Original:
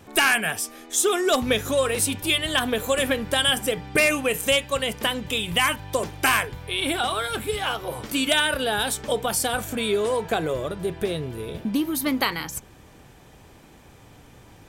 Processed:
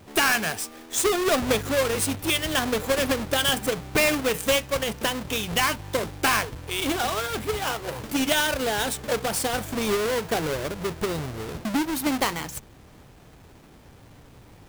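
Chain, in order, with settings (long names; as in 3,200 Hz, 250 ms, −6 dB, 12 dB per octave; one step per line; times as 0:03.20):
each half-wave held at its own peak
level −5.5 dB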